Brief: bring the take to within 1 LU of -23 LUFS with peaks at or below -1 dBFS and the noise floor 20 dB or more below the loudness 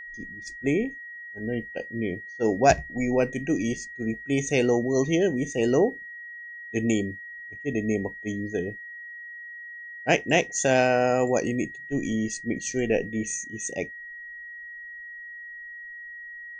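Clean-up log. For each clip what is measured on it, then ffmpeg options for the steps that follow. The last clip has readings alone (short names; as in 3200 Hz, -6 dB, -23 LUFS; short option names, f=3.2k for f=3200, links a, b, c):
steady tone 1900 Hz; tone level -38 dBFS; loudness -26.0 LUFS; peak -5.0 dBFS; loudness target -23.0 LUFS
-> -af "bandreject=f=1.9k:w=30"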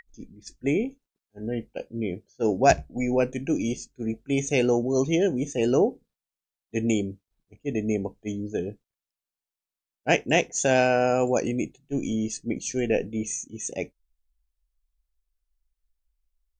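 steady tone none; loudness -26.0 LUFS; peak -5.0 dBFS; loudness target -23.0 LUFS
-> -af "volume=3dB"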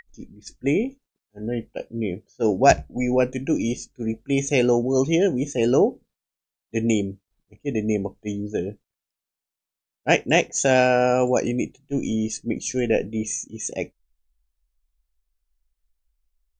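loudness -23.0 LUFS; peak -2.0 dBFS; noise floor -88 dBFS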